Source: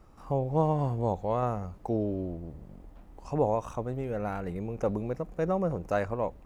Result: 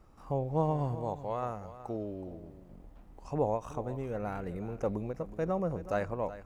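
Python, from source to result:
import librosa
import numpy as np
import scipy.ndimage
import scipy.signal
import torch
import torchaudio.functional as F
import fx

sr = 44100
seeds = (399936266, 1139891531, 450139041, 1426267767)

y = fx.low_shelf(x, sr, hz=450.0, db=-7.0, at=(0.95, 2.7))
y = y + 10.0 ** (-14.5 / 20.0) * np.pad(y, (int(372 * sr / 1000.0), 0))[:len(y)]
y = fx.end_taper(y, sr, db_per_s=320.0)
y = y * librosa.db_to_amplitude(-3.5)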